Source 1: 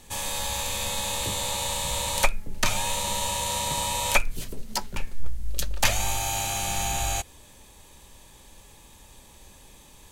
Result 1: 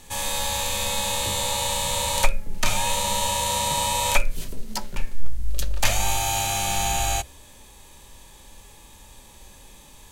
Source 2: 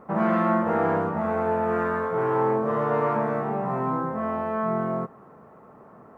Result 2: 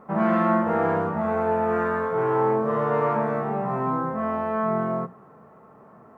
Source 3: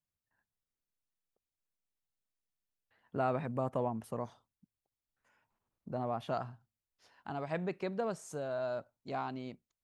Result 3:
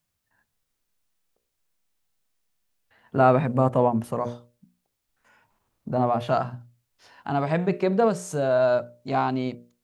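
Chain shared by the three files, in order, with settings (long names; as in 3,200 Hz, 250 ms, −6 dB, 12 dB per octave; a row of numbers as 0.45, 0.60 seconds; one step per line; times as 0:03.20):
mains-hum notches 60/120/180/240/300/360/420/480/540/600 Hz
harmonic and percussive parts rebalanced harmonic +7 dB
loudness normalisation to −24 LKFS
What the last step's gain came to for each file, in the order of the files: −1.5, −5.0, +9.0 decibels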